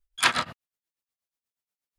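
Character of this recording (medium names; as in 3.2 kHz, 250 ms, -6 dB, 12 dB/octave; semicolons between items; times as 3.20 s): tremolo triangle 8.3 Hz, depth 95%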